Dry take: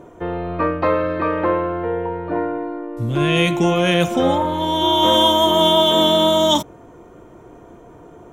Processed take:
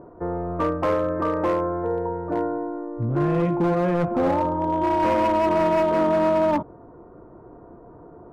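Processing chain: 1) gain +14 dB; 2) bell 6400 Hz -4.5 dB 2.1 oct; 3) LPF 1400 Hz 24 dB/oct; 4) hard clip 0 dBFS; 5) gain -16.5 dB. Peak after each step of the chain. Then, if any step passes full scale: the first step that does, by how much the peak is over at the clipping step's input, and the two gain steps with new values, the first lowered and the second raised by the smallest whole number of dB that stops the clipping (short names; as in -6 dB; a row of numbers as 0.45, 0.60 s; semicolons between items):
+11.0, +9.5, +8.0, 0.0, -16.5 dBFS; step 1, 8.0 dB; step 1 +6 dB, step 5 -8.5 dB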